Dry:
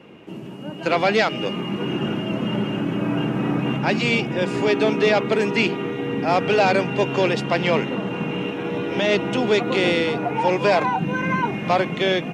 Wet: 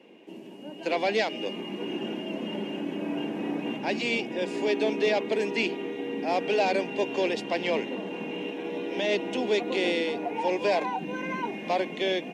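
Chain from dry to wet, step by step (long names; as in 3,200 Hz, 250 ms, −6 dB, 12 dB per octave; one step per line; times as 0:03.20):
high-pass filter 230 Hz 24 dB per octave
parametric band 1,300 Hz −14.5 dB 0.42 octaves
level −6 dB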